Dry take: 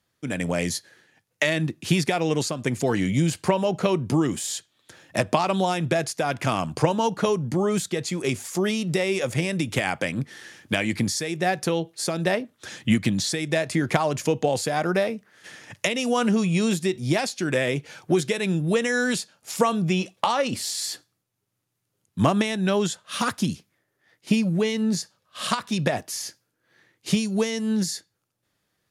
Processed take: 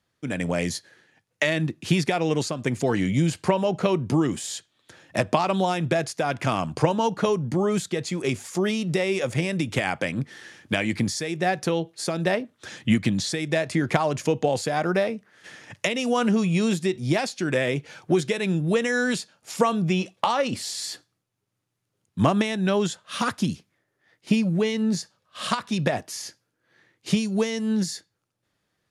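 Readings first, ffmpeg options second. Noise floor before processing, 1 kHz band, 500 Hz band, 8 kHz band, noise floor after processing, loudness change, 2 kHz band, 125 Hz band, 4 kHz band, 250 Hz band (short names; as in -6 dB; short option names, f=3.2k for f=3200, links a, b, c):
-76 dBFS, 0.0 dB, 0.0 dB, -3.5 dB, -77 dBFS, -0.5 dB, -0.5 dB, 0.0 dB, -1.5 dB, 0.0 dB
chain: -af "lowpass=12k,highshelf=f=5.2k:g=-4.5"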